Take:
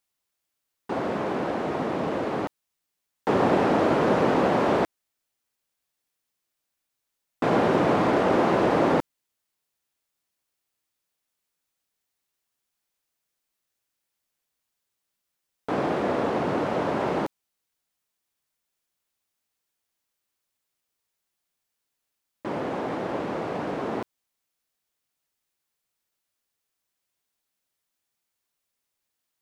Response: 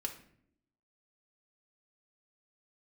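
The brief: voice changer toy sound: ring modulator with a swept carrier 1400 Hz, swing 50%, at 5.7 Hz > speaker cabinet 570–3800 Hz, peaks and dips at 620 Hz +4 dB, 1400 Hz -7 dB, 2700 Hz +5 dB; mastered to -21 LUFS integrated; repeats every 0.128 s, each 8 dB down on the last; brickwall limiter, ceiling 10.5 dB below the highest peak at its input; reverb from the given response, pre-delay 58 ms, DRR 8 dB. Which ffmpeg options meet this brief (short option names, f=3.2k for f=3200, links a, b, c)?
-filter_complex "[0:a]alimiter=limit=-18.5dB:level=0:latency=1,aecho=1:1:128|256|384|512|640:0.398|0.159|0.0637|0.0255|0.0102,asplit=2[a][b];[1:a]atrim=start_sample=2205,adelay=58[c];[b][c]afir=irnorm=-1:irlink=0,volume=-7.5dB[d];[a][d]amix=inputs=2:normalize=0,aeval=exprs='val(0)*sin(2*PI*1400*n/s+1400*0.5/5.7*sin(2*PI*5.7*n/s))':c=same,highpass=570,equalizer=f=620:t=q:w=4:g=4,equalizer=f=1.4k:t=q:w=4:g=-7,equalizer=f=2.7k:t=q:w=4:g=5,lowpass=f=3.8k:w=0.5412,lowpass=f=3.8k:w=1.3066,volume=8dB"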